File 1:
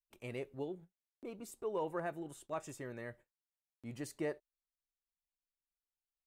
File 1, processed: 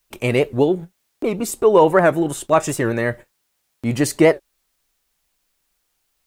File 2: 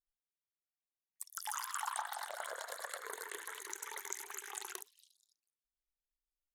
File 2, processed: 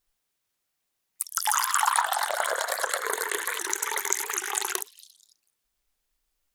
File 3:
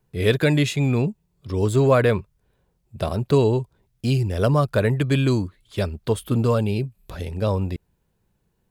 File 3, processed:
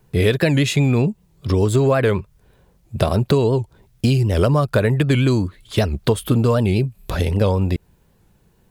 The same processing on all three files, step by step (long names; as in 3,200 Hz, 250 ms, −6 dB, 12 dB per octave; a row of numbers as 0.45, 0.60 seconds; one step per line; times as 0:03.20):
downward compressor 6 to 1, threshold −26 dBFS
wow of a warped record 78 rpm, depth 160 cents
normalise the peak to −3 dBFS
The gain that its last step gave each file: +25.0, +16.0, +12.0 decibels